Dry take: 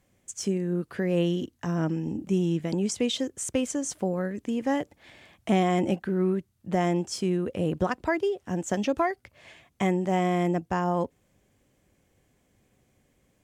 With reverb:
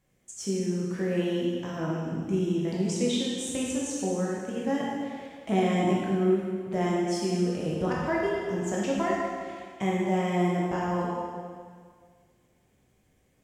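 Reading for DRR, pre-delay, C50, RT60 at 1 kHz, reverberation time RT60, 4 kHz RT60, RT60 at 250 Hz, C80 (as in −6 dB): −5.0 dB, 6 ms, −1.5 dB, 1.9 s, 1.9 s, 1.8 s, 1.9 s, 0.5 dB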